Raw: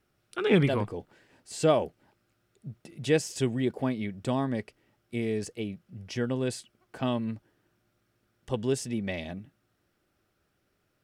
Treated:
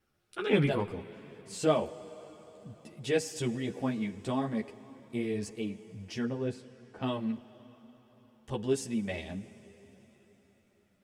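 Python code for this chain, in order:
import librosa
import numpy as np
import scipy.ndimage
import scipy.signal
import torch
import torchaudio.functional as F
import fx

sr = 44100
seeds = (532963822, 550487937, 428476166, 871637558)

y = fx.lowpass(x, sr, hz=1300.0, slope=6, at=(6.24, 7.01))
y = fx.rev_plate(y, sr, seeds[0], rt60_s=4.6, hf_ratio=0.95, predelay_ms=0, drr_db=15.0)
y = fx.ensemble(y, sr)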